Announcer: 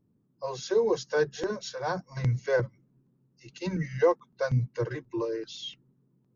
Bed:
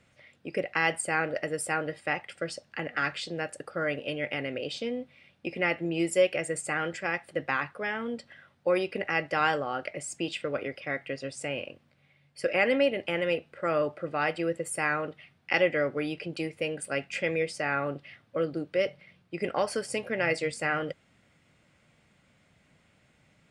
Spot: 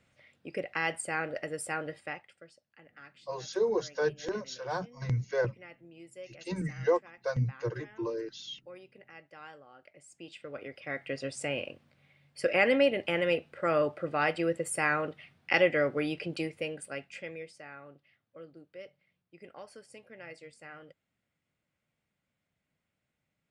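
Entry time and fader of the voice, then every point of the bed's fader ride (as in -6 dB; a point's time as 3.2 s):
2.85 s, -3.5 dB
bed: 1.98 s -5 dB
2.53 s -23 dB
9.76 s -23 dB
11.18 s 0 dB
16.34 s 0 dB
17.79 s -19.5 dB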